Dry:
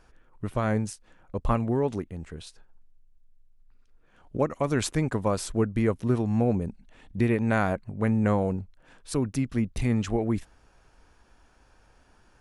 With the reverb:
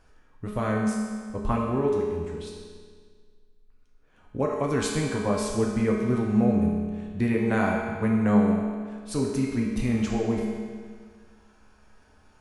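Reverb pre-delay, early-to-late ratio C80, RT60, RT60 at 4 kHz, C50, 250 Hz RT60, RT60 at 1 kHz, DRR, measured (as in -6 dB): 5 ms, 2.5 dB, 1.8 s, 1.6 s, 1.0 dB, 1.8 s, 1.8 s, -2.0 dB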